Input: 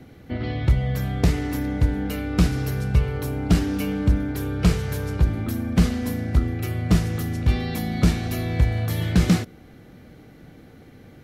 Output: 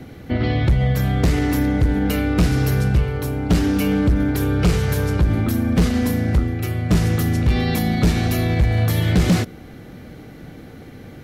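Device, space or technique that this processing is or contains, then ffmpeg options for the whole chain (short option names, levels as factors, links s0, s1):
clipper into limiter: -af "asoftclip=type=hard:threshold=0.2,alimiter=limit=0.119:level=0:latency=1:release=41,volume=2.51"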